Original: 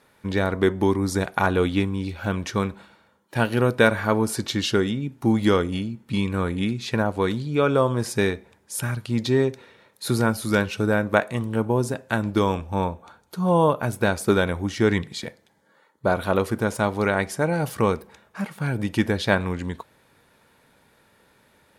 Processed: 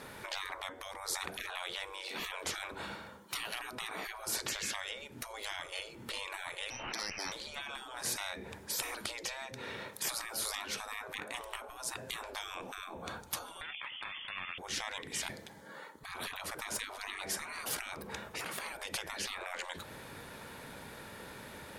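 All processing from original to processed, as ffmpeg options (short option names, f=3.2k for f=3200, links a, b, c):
-filter_complex "[0:a]asettb=1/sr,asplit=3[a][b][c];[a]atrim=end=6.704[d];[b]atrim=start=6.7:end=7.32,asetpts=PTS-STARTPTS,afade=t=in:d=0.004:c=qsin,afade=t=out:st=0.616:d=0.004:c=qsin,aeval=exprs='val(0)+0.5*0.0251*sgn(val(0))':c=same,lowpass=f=2.6k:t=q:w=0.5098,lowpass=f=2.6k:t=q:w=0.6013,lowpass=f=2.6k:t=q:w=0.9,lowpass=f=2.6k:t=q:w=2.563,afreqshift=-3100,aeval=exprs='(tanh(4.47*val(0)+0.8)-tanh(0.8))/4.47':c=same[e];[c]atrim=start=7.316[f];[d][e]acrossfade=d=0.004:c1=hsin:c2=qsin[g];[g][f]acrossfade=d=0.004:c1=qsin:c2=hsin,asettb=1/sr,asplit=3[h][i][j];[h]atrim=end=13.614[k];[i]atrim=start=13.61:end=14.58,asetpts=PTS-STARTPTS,afade=t=in:d=0.004:c=qsin,afade=t=out:st=0.966:d=0.004:c=qsin,equalizer=f=510:t=o:w=0.98:g=8,acontrast=75,lowpass=f=3k:t=q:w=0.5098,lowpass=f=3k:t=q:w=0.6013,lowpass=f=3k:t=q:w=0.9,lowpass=f=3k:t=q:w=2.563,afreqshift=-3500[l];[j]atrim=start=14.576[m];[k][l]acrossfade=d=0.004:c1=hsin:c2=qsin[n];[n][m]acrossfade=d=0.004:c1=qsin:c2=hsin,acompressor=threshold=-32dB:ratio=16,afftfilt=real='re*lt(hypot(re,im),0.0141)':imag='im*lt(hypot(re,im),0.0141)':win_size=1024:overlap=0.75,volume=11dB"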